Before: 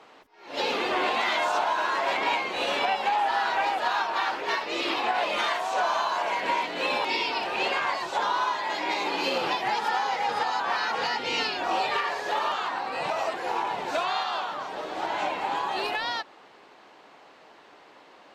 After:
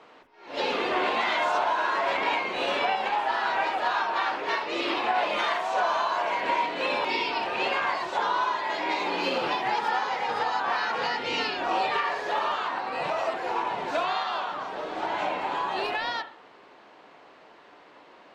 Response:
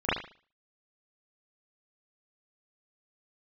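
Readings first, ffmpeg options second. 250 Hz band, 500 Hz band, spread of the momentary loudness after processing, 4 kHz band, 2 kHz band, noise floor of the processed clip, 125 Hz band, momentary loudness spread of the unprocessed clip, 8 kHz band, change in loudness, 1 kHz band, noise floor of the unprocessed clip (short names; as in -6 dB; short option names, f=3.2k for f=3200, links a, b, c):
+1.0 dB, +1.0 dB, 4 LU, -2.0 dB, 0.0 dB, -53 dBFS, +1.0 dB, 5 LU, -5.0 dB, 0.0 dB, 0.0 dB, -53 dBFS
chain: -filter_complex "[0:a]lowpass=f=3.8k:p=1,bandreject=f=810:w=25,asplit=2[a][b];[1:a]atrim=start_sample=2205[c];[b][c]afir=irnorm=-1:irlink=0,volume=-22.5dB[d];[a][d]amix=inputs=2:normalize=0"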